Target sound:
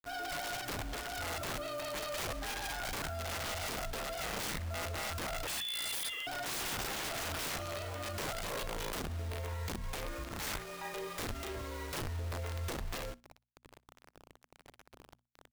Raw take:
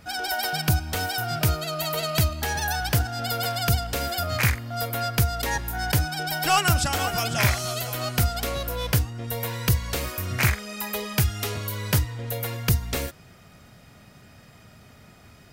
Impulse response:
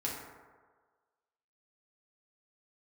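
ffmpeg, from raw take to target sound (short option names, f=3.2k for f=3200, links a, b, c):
-filter_complex "[0:a]afreqshift=-32,adynamicsmooth=sensitivity=3.5:basefreq=1.1k,asplit=2[a][b];[b]adelay=36,volume=-3.5dB[c];[a][c]amix=inputs=2:normalize=0,asettb=1/sr,asplit=3[d][e][f];[d]atrim=end=5.474[g];[e]atrim=start=5.47:end=6.27,asetpts=PTS-STARTPTS,afade=t=in:d=0.004:c=qsin,afade=t=out:st=0.796:d=0.004:c=qsin,lowpass=f=3k:t=q:w=0.5098,lowpass=f=3k:t=q:w=0.6013,lowpass=f=3k:t=q:w=0.9,lowpass=f=3k:t=q:w=2.563,afreqshift=-3500[h];[f]atrim=start=6.266[i];[g][h]acrossfade=d=0.004:c1=hsin:c2=qsin[j];[j][i]acrossfade=d=0.004:c1=qsin:c2=hsin,acrusher=bits=6:mix=0:aa=0.000001,equalizer=f=190:w=4.2:g=-13,asettb=1/sr,asplit=3[k][l][m];[k]atrim=end=9.204[n];[l]atrim=start=9.2:end=9.84,asetpts=PTS-STARTPTS,afade=t=in:d=0.004:c=qsin,afade=t=out:st=0.636:d=0.004:c=qsin,acompressor=threshold=-24dB:ratio=8[o];[m]atrim=start=9.836[p];[n][o]acrossfade=d=0.004:c1=hsin:c2=qsin[q];[q][p]acrossfade=d=0.004:c1=qsin:c2=hsin,aeval=exprs='(mod(11.9*val(0)+1,2)-1)/11.9':c=same,bandreject=f=60:t=h:w=6,bandreject=f=120:t=h:w=6,bandreject=f=180:t=h:w=6,bandreject=f=240:t=h:w=6,alimiter=level_in=3dB:limit=-24dB:level=0:latency=1:release=29,volume=-3dB,asplit=2[r][s];[s]aecho=0:1:61|122:0.0668|0.0107[t];[r][t]amix=inputs=2:normalize=0,volume=-5.5dB"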